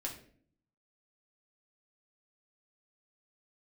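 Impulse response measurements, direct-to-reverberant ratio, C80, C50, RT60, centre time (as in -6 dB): -1.5 dB, 12.5 dB, 8.5 dB, 0.55 s, 21 ms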